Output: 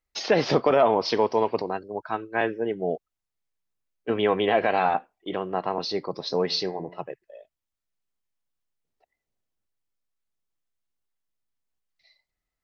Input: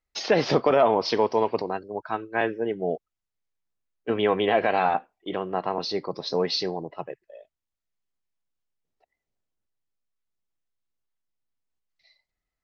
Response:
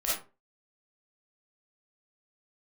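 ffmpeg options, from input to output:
-filter_complex "[0:a]asplit=3[link_01][link_02][link_03];[link_01]afade=type=out:start_time=6.49:duration=0.02[link_04];[link_02]bandreject=frequency=88.5:width_type=h:width=4,bandreject=frequency=177:width_type=h:width=4,bandreject=frequency=265.5:width_type=h:width=4,bandreject=frequency=354:width_type=h:width=4,bandreject=frequency=442.5:width_type=h:width=4,bandreject=frequency=531:width_type=h:width=4,bandreject=frequency=619.5:width_type=h:width=4,bandreject=frequency=708:width_type=h:width=4,bandreject=frequency=796.5:width_type=h:width=4,bandreject=frequency=885:width_type=h:width=4,bandreject=frequency=973.5:width_type=h:width=4,bandreject=frequency=1062:width_type=h:width=4,bandreject=frequency=1150.5:width_type=h:width=4,bandreject=frequency=1239:width_type=h:width=4,bandreject=frequency=1327.5:width_type=h:width=4,bandreject=frequency=1416:width_type=h:width=4,bandreject=frequency=1504.5:width_type=h:width=4,bandreject=frequency=1593:width_type=h:width=4,bandreject=frequency=1681.5:width_type=h:width=4,bandreject=frequency=1770:width_type=h:width=4,bandreject=frequency=1858.5:width_type=h:width=4,bandreject=frequency=1947:width_type=h:width=4,bandreject=frequency=2035.5:width_type=h:width=4,bandreject=frequency=2124:width_type=h:width=4,bandreject=frequency=2212.5:width_type=h:width=4,bandreject=frequency=2301:width_type=h:width=4,bandreject=frequency=2389.5:width_type=h:width=4,bandreject=frequency=2478:width_type=h:width=4,afade=type=in:start_time=6.49:duration=0.02,afade=type=out:start_time=6.99:duration=0.02[link_05];[link_03]afade=type=in:start_time=6.99:duration=0.02[link_06];[link_04][link_05][link_06]amix=inputs=3:normalize=0"

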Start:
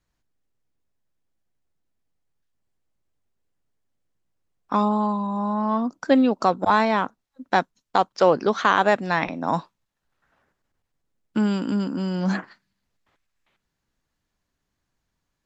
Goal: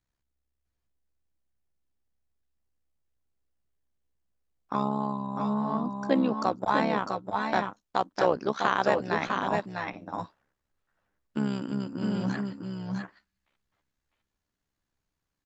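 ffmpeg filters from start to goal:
ffmpeg -i in.wav -af "tremolo=f=67:d=0.788,aecho=1:1:651|661:0.501|0.422,volume=-4dB" out.wav

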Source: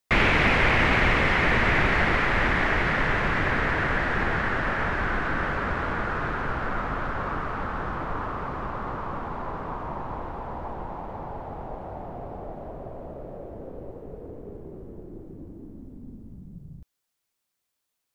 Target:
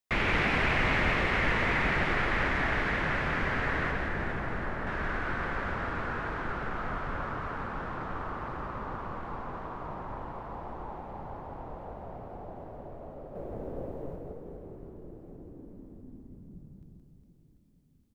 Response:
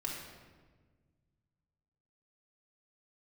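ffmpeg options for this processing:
-filter_complex "[0:a]asettb=1/sr,asplit=3[link_01][link_02][link_03];[link_01]atrim=end=3.914[link_04];[link_02]atrim=start=3.91:end=4.87,asetpts=PTS-STARTPTS,afade=type=in:duration=0.004:curve=qsin,afade=type=out:start_time=0.956:duration=0.004:curve=qsin,equalizer=frequency=3800:width=0.36:gain=-9.5[link_05];[link_03]atrim=start=4.866[link_06];[link_04][link_05]acrossfade=duration=0.004:curve1=hsin:curve2=qsin[link_07];[link_07][link_06]acrossfade=duration=0.004:curve1=qsin:curve2=hsin,asettb=1/sr,asplit=3[link_08][link_09][link_10];[link_08]atrim=end=13.354[link_11];[link_09]atrim=start=13.35:end=14.16,asetpts=PTS-STARTPTS,afade=type=in:duration=0.004:curve=qsin,afade=type=out:start_time=0.806:duration=0.004:curve=qsin,acontrast=87[link_12];[link_10]atrim=start=14.156[link_13];[link_11][link_12]acrossfade=duration=0.004:curve1=hsin:curve2=qsin[link_14];[link_14][link_13]acrossfade=duration=0.004:curve1=qsin:curve2=hsin,aecho=1:1:170|408|741.2|1208|1861:0.631|0.398|0.251|0.158|0.1,volume=-8dB"

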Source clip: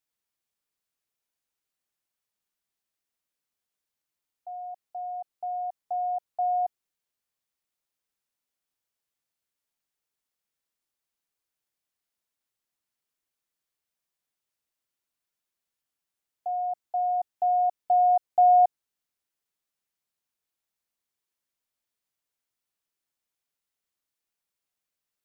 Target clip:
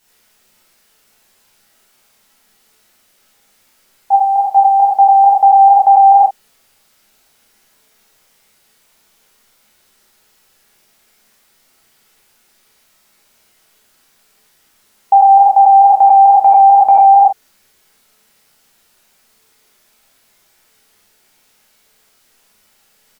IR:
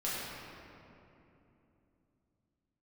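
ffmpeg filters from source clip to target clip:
-filter_complex "[0:a]acompressor=threshold=-25dB:ratio=4,aecho=1:1:37|52:0.398|0.376[link_01];[1:a]atrim=start_sample=2205,atrim=end_sample=6615[link_02];[link_01][link_02]afir=irnorm=-1:irlink=0,asetrate=48000,aresample=44100,alimiter=level_in=29dB:limit=-1dB:release=50:level=0:latency=1,volume=-1dB"

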